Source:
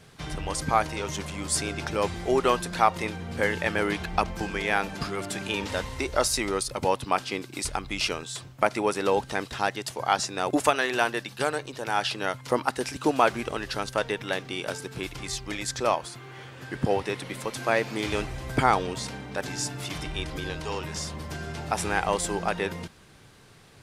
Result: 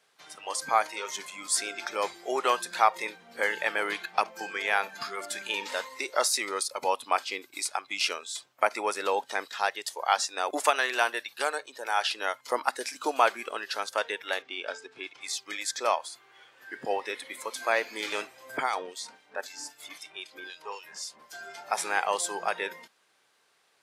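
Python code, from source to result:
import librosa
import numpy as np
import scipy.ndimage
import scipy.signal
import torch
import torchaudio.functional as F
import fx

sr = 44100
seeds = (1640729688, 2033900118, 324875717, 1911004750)

y = fx.air_absorb(x, sr, metres=86.0, at=(14.42, 15.21))
y = fx.harmonic_tremolo(y, sr, hz=3.8, depth_pct=70, crossover_hz=2300.0, at=(18.57, 21.33))
y = scipy.signal.sosfilt(scipy.signal.butter(2, 590.0, 'highpass', fs=sr, output='sos'), y)
y = fx.noise_reduce_blind(y, sr, reduce_db=11)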